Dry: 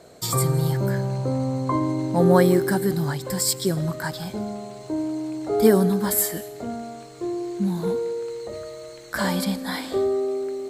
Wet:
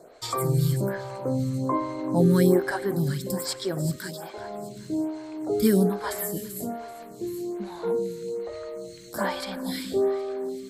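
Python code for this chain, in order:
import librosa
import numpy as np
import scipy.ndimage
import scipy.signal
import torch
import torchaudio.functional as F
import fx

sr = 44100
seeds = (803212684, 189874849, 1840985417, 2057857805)

y = fx.highpass(x, sr, hz=250.0, slope=24, at=(3.96, 4.38))
y = fx.echo_feedback(y, sr, ms=386, feedback_pct=53, wet_db=-16.5)
y = fx.stagger_phaser(y, sr, hz=1.2)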